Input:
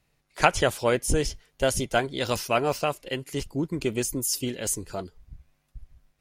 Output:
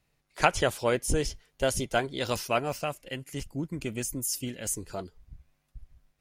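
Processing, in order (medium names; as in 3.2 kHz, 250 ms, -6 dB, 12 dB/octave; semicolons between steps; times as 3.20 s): 2.59–4.77 s: fifteen-band graphic EQ 400 Hz -7 dB, 1 kHz -5 dB, 4 kHz -6 dB; trim -3 dB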